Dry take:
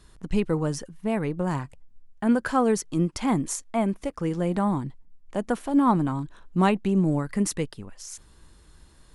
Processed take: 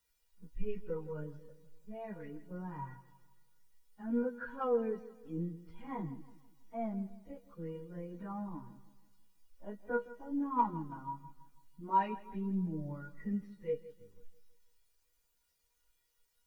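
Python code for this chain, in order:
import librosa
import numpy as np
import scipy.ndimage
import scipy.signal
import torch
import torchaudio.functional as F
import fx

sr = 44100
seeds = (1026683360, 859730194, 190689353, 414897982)

p1 = scipy.signal.sosfilt(scipy.signal.butter(4, 3700.0, 'lowpass', fs=sr, output='sos'), x)
p2 = fx.dynamic_eq(p1, sr, hz=1700.0, q=0.9, threshold_db=-42.0, ratio=4.0, max_db=5)
p3 = fx.stretch_vocoder_free(p2, sr, factor=1.8)
p4 = fx.leveller(p3, sr, passes=1)
p5 = fx.quant_dither(p4, sr, seeds[0], bits=6, dither='triangular')
p6 = p4 + F.gain(torch.from_numpy(p5), -4.0).numpy()
p7 = fx.comb_fb(p6, sr, f0_hz=480.0, decay_s=0.19, harmonics='all', damping=0.0, mix_pct=80)
p8 = fx.echo_feedback(p7, sr, ms=163, feedback_pct=56, wet_db=-11.5)
p9 = fx.spectral_expand(p8, sr, expansion=1.5)
y = F.gain(torch.from_numpy(p9), -6.0).numpy()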